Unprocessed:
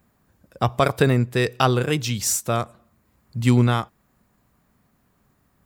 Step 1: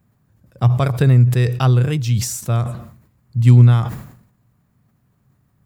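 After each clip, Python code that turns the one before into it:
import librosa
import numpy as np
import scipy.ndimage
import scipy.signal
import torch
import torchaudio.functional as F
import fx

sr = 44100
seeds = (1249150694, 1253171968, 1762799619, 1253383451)

y = fx.peak_eq(x, sr, hz=120.0, db=15.0, octaves=1.1)
y = fx.sustainer(y, sr, db_per_s=84.0)
y = y * 10.0 ** (-4.5 / 20.0)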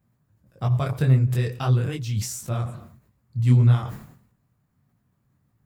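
y = fx.detune_double(x, sr, cents=56)
y = y * 10.0 ** (-3.5 / 20.0)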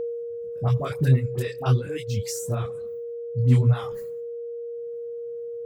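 y = fx.dispersion(x, sr, late='highs', ms=61.0, hz=1100.0)
y = y + 10.0 ** (-26.0 / 20.0) * np.sin(2.0 * np.pi * 470.0 * np.arange(len(y)) / sr)
y = fx.dereverb_blind(y, sr, rt60_s=1.2)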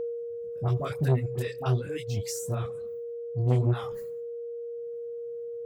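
y = fx.transformer_sat(x, sr, knee_hz=330.0)
y = y * 10.0 ** (-3.0 / 20.0)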